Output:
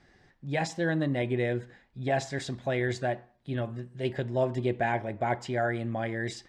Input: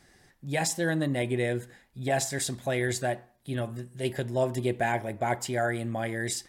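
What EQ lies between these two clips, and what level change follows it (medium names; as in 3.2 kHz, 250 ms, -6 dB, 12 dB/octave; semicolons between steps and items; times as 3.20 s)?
distance through air 150 m; 0.0 dB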